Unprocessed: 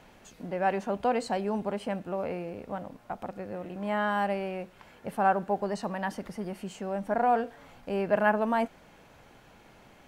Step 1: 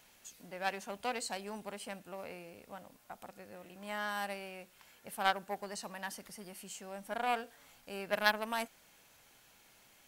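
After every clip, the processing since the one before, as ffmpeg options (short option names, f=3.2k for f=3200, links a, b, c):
-af "aeval=exprs='0.251*(cos(1*acos(clip(val(0)/0.251,-1,1)))-cos(1*PI/2))+0.0501*(cos(3*acos(clip(val(0)/0.251,-1,1)))-cos(3*PI/2))':c=same,crystalizer=i=9.5:c=0,volume=-8dB"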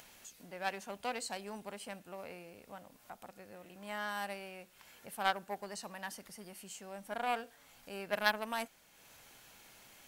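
-af "acompressor=mode=upward:threshold=-49dB:ratio=2.5,volume=-1.5dB"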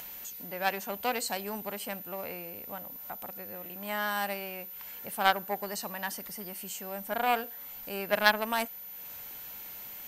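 -af "aeval=exprs='val(0)+0.00355*sin(2*PI*14000*n/s)':c=same,volume=7.5dB"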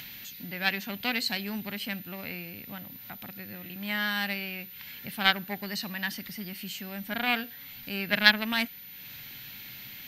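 -af "equalizer=f=125:t=o:w=1:g=12,equalizer=f=250:t=o:w=1:g=6,equalizer=f=500:t=o:w=1:g=-7,equalizer=f=1k:t=o:w=1:g=-6,equalizer=f=2k:t=o:w=1:g=8,equalizer=f=4k:t=o:w=1:g=11,equalizer=f=8k:t=o:w=1:g=-9,volume=-1dB"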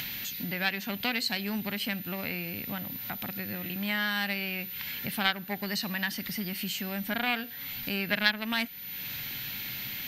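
-af "acompressor=threshold=-40dB:ratio=2,volume=7.5dB"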